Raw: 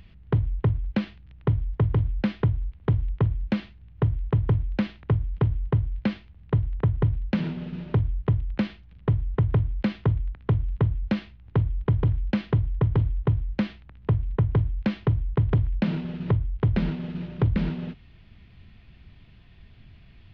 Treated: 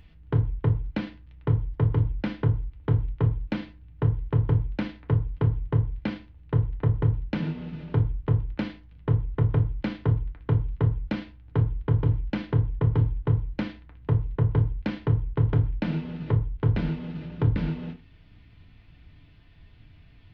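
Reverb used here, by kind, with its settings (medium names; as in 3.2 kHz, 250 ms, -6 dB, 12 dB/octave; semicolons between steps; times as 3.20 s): FDN reverb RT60 0.32 s, low-frequency decay 1×, high-frequency decay 0.6×, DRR 2.5 dB; trim -3.5 dB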